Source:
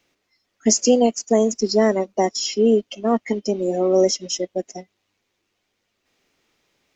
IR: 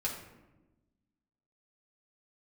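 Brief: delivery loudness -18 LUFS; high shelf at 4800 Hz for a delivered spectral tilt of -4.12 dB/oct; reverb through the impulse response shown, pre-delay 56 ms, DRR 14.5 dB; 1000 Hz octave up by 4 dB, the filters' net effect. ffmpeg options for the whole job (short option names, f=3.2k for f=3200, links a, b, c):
-filter_complex "[0:a]equalizer=f=1k:t=o:g=6.5,highshelf=f=4.8k:g=-3,asplit=2[a][b];[1:a]atrim=start_sample=2205,adelay=56[c];[b][c]afir=irnorm=-1:irlink=0,volume=-18dB[d];[a][d]amix=inputs=2:normalize=0,volume=1dB"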